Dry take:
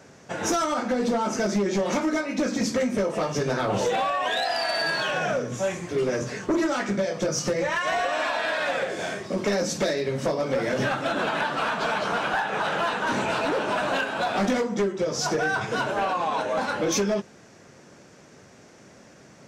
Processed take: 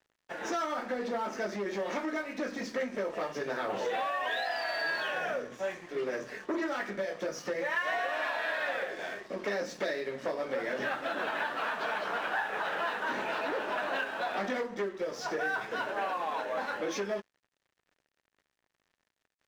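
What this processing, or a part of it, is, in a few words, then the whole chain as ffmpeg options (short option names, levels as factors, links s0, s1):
pocket radio on a weak battery: -af "highpass=300,lowpass=4100,aeval=exprs='sgn(val(0))*max(abs(val(0))-0.00473,0)':c=same,equalizer=f=1800:t=o:w=0.28:g=6,volume=0.447"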